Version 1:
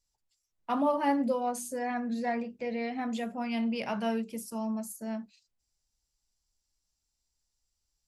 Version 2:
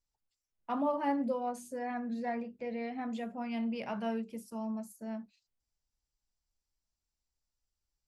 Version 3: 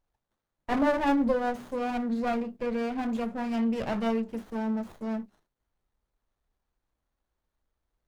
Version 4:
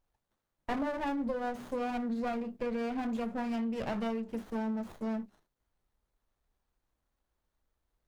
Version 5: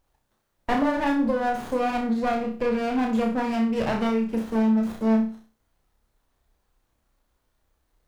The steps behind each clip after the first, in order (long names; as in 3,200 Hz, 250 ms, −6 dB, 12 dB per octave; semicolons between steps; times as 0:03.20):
high-shelf EQ 3,600 Hz −9 dB; level −4 dB
windowed peak hold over 17 samples; level +8 dB
downward compressor 6 to 1, threshold −31 dBFS, peak gain reduction 11 dB
flutter between parallel walls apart 5.4 metres, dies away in 0.38 s; level +9 dB